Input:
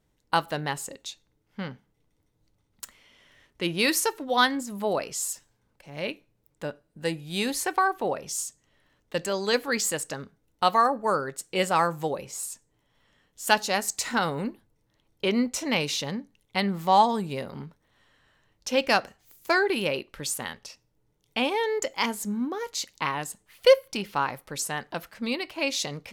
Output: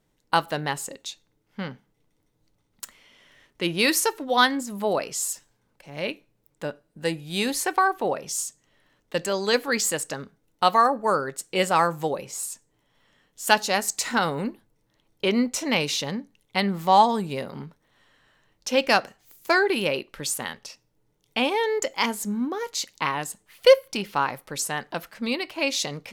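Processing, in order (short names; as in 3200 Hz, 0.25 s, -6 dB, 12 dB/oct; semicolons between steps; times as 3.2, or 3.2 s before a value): bell 66 Hz -14 dB 0.72 oct; gain +2.5 dB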